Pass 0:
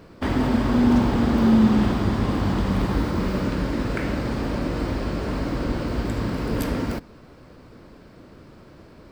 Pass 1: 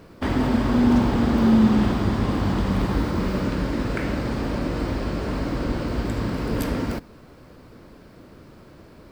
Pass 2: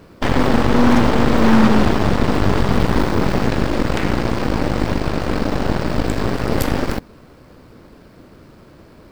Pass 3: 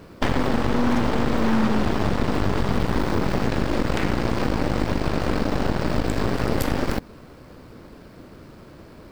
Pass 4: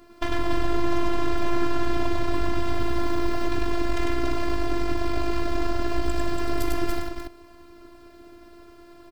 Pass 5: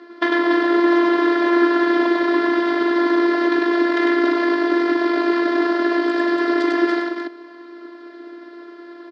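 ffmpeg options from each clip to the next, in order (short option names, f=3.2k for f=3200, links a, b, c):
-af "acrusher=bits=10:mix=0:aa=0.000001"
-af "aeval=exprs='0.447*(cos(1*acos(clip(val(0)/0.447,-1,1)))-cos(1*PI/2))+0.126*(cos(8*acos(clip(val(0)/0.447,-1,1)))-cos(8*PI/2))':c=same,volume=2.5dB"
-af "acompressor=threshold=-16dB:ratio=6"
-af "aecho=1:1:99.13|285.7:0.794|0.562,afftfilt=real='hypot(re,im)*cos(PI*b)':imag='0':win_size=512:overlap=0.75,volume=-2.5dB"
-af "highpass=f=290:w=0.5412,highpass=f=290:w=1.3066,equalizer=f=320:t=q:w=4:g=5,equalizer=f=750:t=q:w=4:g=-5,equalizer=f=1.8k:t=q:w=4:g=8,equalizer=f=2.6k:t=q:w=4:g=-9,lowpass=f=4.3k:w=0.5412,lowpass=f=4.3k:w=1.3066,volume=9dB"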